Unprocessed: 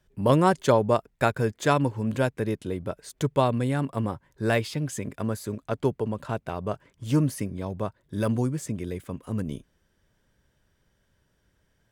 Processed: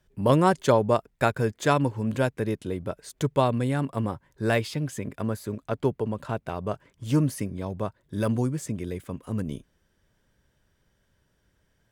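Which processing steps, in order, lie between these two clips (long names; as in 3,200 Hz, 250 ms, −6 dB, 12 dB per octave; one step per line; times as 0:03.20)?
0:04.74–0:06.49: dynamic equaliser 7,300 Hz, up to −5 dB, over −50 dBFS, Q 0.73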